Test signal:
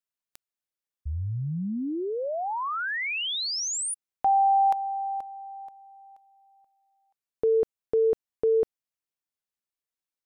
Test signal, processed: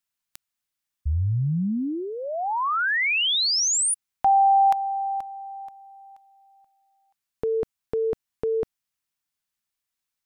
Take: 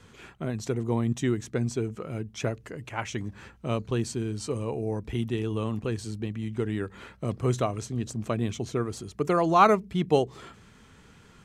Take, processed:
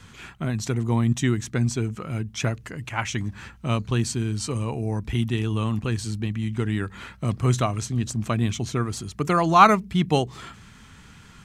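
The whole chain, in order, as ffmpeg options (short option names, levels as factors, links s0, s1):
-af "equalizer=f=460:w=1.1:g=-10,volume=2.37"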